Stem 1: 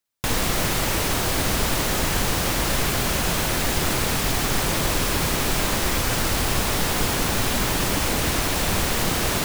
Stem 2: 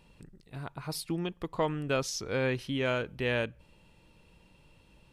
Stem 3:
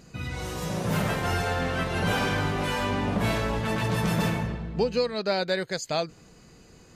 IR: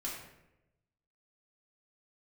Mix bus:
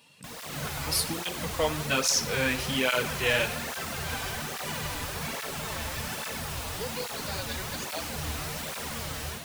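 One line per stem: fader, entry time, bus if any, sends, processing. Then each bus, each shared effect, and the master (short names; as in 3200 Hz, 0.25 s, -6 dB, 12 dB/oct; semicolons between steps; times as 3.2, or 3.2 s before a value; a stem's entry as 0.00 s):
-9.0 dB, 0.00 s, no send, AGC gain up to 10 dB; resonator 76 Hz, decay 0.35 s, harmonics all, mix 80%
+2.0 dB, 0.00 s, send -7 dB, HPF 140 Hz 24 dB/oct; high shelf 2300 Hz +12 dB
-4.0 dB, 2.00 s, no send, HPF 1100 Hz 6 dB/oct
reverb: on, RT60 0.90 s, pre-delay 3 ms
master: bell 330 Hz -9 dB 0.34 oct; tape flanging out of phase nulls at 1.2 Hz, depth 5.8 ms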